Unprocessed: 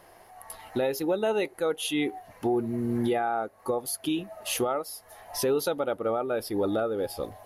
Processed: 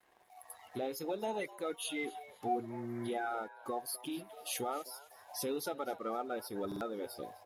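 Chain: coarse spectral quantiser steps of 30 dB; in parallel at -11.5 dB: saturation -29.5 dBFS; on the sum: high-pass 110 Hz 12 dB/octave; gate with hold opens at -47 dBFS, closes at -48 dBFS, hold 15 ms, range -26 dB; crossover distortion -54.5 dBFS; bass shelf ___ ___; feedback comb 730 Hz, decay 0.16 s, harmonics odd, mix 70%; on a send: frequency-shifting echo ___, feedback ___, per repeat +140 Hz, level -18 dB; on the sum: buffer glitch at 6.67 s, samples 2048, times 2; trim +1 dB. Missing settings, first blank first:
400 Hz, -5 dB, 255 ms, 37%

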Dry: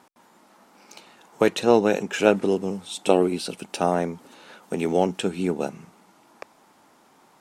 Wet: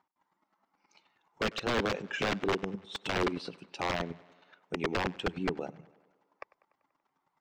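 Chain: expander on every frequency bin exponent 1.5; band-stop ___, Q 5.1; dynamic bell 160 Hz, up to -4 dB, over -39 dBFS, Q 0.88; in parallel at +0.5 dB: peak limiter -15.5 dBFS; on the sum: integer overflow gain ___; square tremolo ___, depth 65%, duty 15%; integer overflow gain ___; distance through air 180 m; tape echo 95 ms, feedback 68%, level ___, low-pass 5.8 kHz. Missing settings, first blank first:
230 Hz, 11 dB, 9.5 Hz, 20.5 dB, -20.5 dB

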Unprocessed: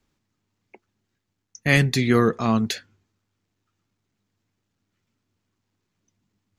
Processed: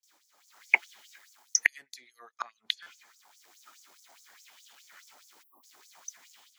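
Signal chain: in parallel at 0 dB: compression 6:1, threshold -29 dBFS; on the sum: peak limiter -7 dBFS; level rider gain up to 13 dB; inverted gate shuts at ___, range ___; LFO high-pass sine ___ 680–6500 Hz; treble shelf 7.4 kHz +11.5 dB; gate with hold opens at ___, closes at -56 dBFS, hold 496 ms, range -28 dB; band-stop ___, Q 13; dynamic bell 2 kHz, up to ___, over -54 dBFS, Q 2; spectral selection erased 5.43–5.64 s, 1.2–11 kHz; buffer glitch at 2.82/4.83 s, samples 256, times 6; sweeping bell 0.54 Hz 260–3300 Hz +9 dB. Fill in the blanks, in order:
-7 dBFS, -39 dB, 4.8 Hz, -55 dBFS, 2.7 kHz, +6 dB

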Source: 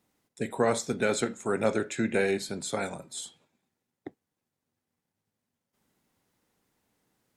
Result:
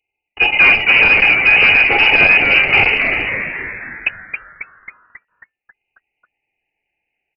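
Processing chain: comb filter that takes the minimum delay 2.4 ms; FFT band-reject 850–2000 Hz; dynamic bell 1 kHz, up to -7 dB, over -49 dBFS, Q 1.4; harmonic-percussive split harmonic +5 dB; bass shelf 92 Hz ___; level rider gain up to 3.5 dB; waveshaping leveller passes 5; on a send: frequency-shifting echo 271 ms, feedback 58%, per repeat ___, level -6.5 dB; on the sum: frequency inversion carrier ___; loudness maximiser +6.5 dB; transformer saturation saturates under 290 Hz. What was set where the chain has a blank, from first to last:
-11 dB, +140 Hz, 2.9 kHz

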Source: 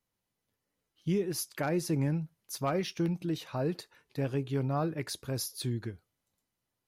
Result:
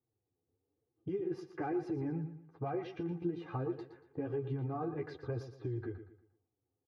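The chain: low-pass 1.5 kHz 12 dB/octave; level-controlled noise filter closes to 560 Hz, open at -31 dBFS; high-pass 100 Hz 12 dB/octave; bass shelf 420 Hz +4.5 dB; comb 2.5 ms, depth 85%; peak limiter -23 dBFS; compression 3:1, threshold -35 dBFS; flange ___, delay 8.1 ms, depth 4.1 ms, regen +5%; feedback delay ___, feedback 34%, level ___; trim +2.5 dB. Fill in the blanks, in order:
1.1 Hz, 117 ms, -11 dB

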